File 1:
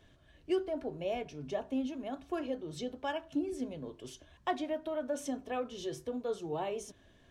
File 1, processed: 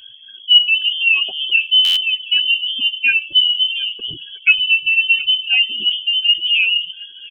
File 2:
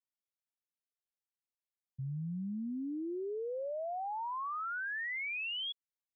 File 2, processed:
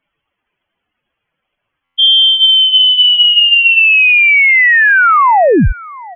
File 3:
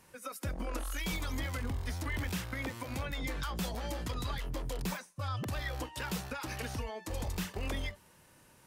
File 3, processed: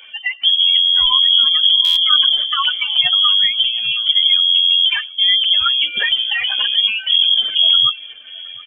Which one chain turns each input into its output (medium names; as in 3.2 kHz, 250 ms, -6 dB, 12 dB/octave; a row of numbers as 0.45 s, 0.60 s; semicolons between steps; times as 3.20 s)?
spectral contrast enhancement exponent 2.3; hum notches 60/120/180/240/300/360/420/480/540/600 Hz; feedback delay 719 ms, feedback 16%, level -21 dB; frequency inversion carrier 3.3 kHz; buffer glitch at 1.84 s, samples 512, times 10; peak normalisation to -1.5 dBFS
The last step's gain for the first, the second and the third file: +21.5 dB, +30.5 dB, +21.5 dB